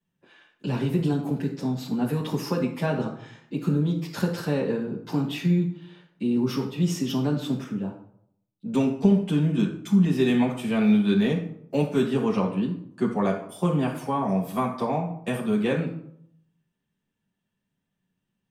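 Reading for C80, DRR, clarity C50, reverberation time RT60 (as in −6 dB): 10.5 dB, −8.0 dB, 7.0 dB, 0.70 s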